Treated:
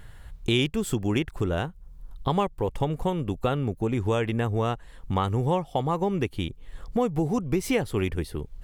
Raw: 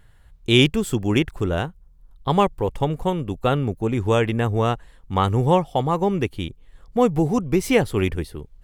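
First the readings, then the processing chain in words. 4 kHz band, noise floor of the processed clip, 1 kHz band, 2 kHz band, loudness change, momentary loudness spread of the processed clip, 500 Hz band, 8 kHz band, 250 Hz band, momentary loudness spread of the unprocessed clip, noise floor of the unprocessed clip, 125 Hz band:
−7.5 dB, −48 dBFS, −6.0 dB, −6.5 dB, −6.0 dB, 8 LU, −6.0 dB, −4.0 dB, −5.0 dB, 10 LU, −52 dBFS, −4.5 dB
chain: downward compressor 2.5 to 1, threshold −36 dBFS, peak gain reduction 17 dB
level +7.5 dB

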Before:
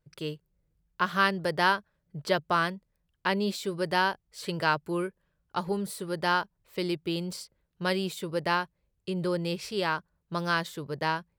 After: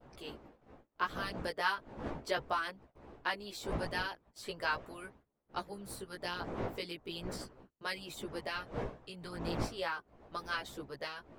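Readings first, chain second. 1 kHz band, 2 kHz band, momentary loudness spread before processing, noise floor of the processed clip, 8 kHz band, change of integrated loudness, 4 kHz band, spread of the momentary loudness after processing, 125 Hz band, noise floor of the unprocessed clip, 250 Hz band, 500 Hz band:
−10.0 dB, −8.5 dB, 12 LU, −74 dBFS, −7.5 dB, −9.5 dB, −8.0 dB, 13 LU, −10.0 dB, −78 dBFS, −12.0 dB, −10.0 dB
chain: wind on the microphone 590 Hz −38 dBFS
harmonic and percussive parts rebalanced harmonic −15 dB
noise gate −54 dBFS, range −21 dB
multi-voice chorus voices 2, 0.37 Hz, delay 16 ms, depth 2 ms
level −2.5 dB

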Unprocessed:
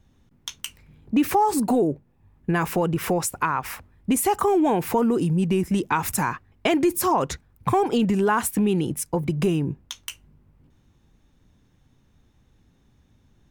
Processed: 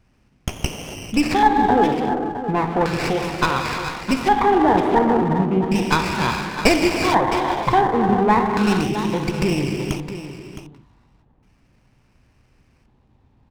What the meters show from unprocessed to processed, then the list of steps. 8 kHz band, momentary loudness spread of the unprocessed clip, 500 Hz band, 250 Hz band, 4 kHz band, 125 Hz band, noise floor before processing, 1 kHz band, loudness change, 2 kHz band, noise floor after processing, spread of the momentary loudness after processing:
−4.0 dB, 14 LU, +3.5 dB, +3.0 dB, +7.5 dB, +2.5 dB, −62 dBFS, +6.5 dB, +4.0 dB, +7.5 dB, −60 dBFS, 12 LU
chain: reverb whose tail is shaped and stops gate 480 ms flat, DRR 1.5 dB
auto-filter low-pass square 0.35 Hz 920–3,200 Hz
parametric band 2,500 Hz +11 dB 0.76 octaves
on a send: single-tap delay 664 ms −12 dB
on the sum: windowed peak hold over 9 samples
level −1 dB

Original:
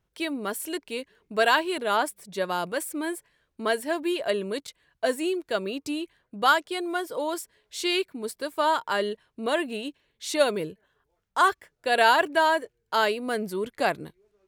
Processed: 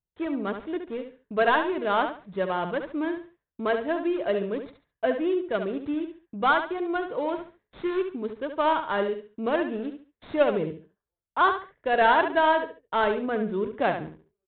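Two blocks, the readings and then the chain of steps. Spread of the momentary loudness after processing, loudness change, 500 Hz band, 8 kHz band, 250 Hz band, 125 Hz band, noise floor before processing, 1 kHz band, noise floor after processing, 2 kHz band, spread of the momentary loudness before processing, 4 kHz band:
12 LU, 0.0 dB, +1.0 dB, below −40 dB, +2.5 dB, +3.5 dB, −77 dBFS, 0.0 dB, below −85 dBFS, −2.0 dB, 12 LU, −7.5 dB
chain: running median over 15 samples
noise gate with hold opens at −52 dBFS
low-shelf EQ 210 Hz +5.5 dB
repeating echo 70 ms, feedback 26%, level −8 dB
downsampling to 8,000 Hz

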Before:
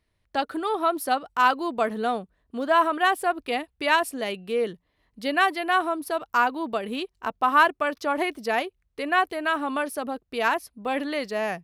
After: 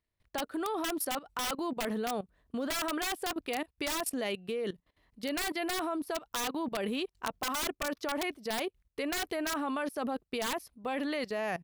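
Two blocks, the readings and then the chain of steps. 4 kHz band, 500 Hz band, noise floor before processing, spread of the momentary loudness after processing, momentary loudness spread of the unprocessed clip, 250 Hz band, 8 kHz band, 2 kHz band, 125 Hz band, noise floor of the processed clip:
−4.0 dB, −8.0 dB, −74 dBFS, 5 LU, 10 LU, −4.5 dB, +3.5 dB, −12.0 dB, can't be measured, −85 dBFS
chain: wrap-around overflow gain 16 dB
output level in coarse steps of 18 dB
level +3 dB

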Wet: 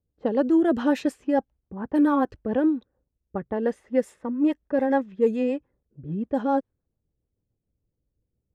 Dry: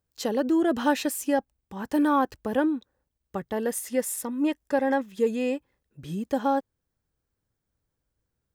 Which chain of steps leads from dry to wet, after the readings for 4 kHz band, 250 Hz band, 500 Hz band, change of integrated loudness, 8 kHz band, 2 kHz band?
can't be measured, +3.0 dB, +2.0 dB, +2.0 dB, below −15 dB, −3.0 dB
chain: high-shelf EQ 2,300 Hz −11.5 dB
low-pass that shuts in the quiet parts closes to 560 Hz, open at −20.5 dBFS
rotating-speaker cabinet horn 7 Hz
level +4.5 dB

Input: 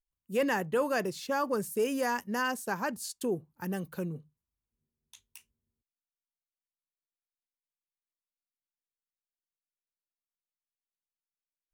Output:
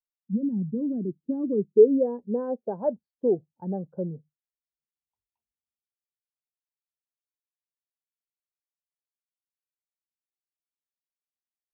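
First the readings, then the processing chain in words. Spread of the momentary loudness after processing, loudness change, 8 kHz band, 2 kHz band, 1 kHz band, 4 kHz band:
15 LU, +6.0 dB, below −35 dB, below −25 dB, −8.5 dB, below −35 dB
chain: low-pass filter sweep 210 Hz → 690 Hz, 0:00.48–0:03.08
every bin expanded away from the loudest bin 1.5 to 1
level +9 dB

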